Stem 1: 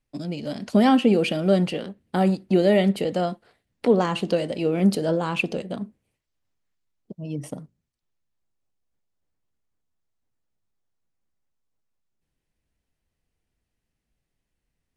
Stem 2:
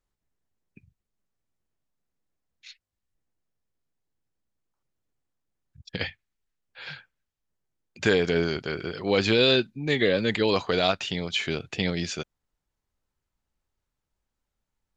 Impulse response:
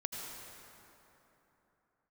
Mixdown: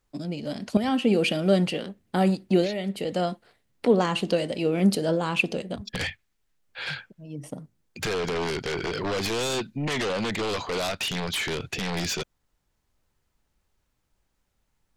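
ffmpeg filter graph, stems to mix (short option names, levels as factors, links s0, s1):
-filter_complex "[0:a]adynamicequalizer=threshold=0.0178:dfrequency=1700:dqfactor=0.7:tfrequency=1700:tqfactor=0.7:attack=5:release=100:ratio=0.375:range=2:mode=boostabove:tftype=highshelf,volume=0.841[s0];[1:a]alimiter=limit=0.112:level=0:latency=1:release=92,aeval=exprs='0.112*sin(PI/2*2.82*val(0)/0.112)':c=same,volume=0.562,asplit=2[s1][s2];[s2]apad=whole_len=660053[s3];[s0][s3]sidechaincompress=threshold=0.00631:ratio=10:attack=6.4:release=549[s4];[s4][s1]amix=inputs=2:normalize=0"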